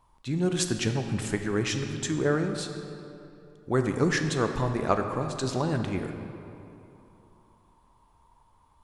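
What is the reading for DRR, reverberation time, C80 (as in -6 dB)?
5.5 dB, 2.9 s, 7.0 dB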